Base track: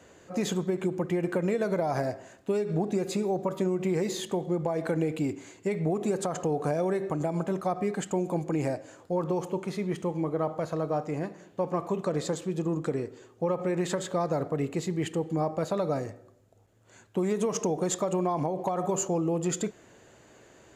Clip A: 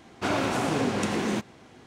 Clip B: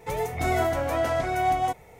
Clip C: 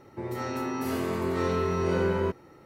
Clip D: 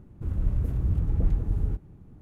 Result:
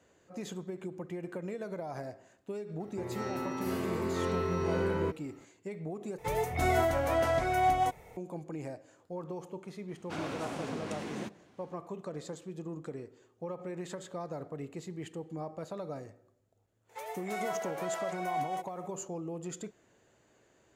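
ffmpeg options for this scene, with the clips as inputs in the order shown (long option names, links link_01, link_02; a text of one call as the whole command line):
ffmpeg -i bed.wav -i cue0.wav -i cue1.wav -i cue2.wav -filter_complex "[2:a]asplit=2[link_01][link_02];[0:a]volume=-11.5dB[link_03];[link_02]highpass=frequency=510:width=0.5412,highpass=frequency=510:width=1.3066[link_04];[link_03]asplit=2[link_05][link_06];[link_05]atrim=end=6.184[link_07];[link_01]atrim=end=1.99,asetpts=PTS-STARTPTS,volume=-3dB[link_08];[link_06]atrim=start=8.166[link_09];[3:a]atrim=end=2.65,asetpts=PTS-STARTPTS,volume=-5dB,afade=type=in:duration=0.004:curve=hsin,afade=type=out:start_time=2.646:duration=0.004:curve=hsin,adelay=2800[link_10];[1:a]atrim=end=1.86,asetpts=PTS-STARTPTS,volume=-12.5dB,afade=type=in:duration=0.004:curve=hsin,afade=type=out:start_time=1.856:duration=0.004:curve=hsin,adelay=9880[link_11];[link_04]atrim=end=1.99,asetpts=PTS-STARTPTS,volume=-10dB,afade=type=in:duration=0.004:curve=hsin,afade=type=out:start_time=1.986:duration=0.004:curve=hsin,adelay=16890[link_12];[link_07][link_08]acrossfade=duration=0.004:curve1=hsin:curve2=hsin[link_13];[link_13][link_09]acrossfade=duration=0.004:curve1=hsin:curve2=hsin[link_14];[link_14][link_10][link_11][link_12]amix=inputs=4:normalize=0" out.wav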